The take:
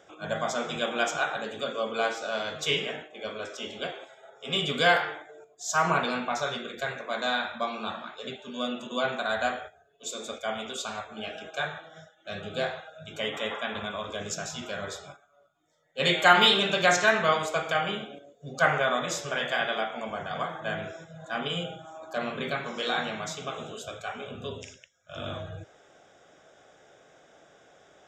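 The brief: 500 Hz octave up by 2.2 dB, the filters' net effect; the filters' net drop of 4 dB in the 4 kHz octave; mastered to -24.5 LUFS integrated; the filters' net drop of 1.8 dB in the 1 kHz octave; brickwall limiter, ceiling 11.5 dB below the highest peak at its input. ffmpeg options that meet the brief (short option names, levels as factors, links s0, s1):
-af "equalizer=f=500:t=o:g=4.5,equalizer=f=1000:t=o:g=-4.5,equalizer=f=4000:t=o:g=-5,volume=2.51,alimiter=limit=0.266:level=0:latency=1"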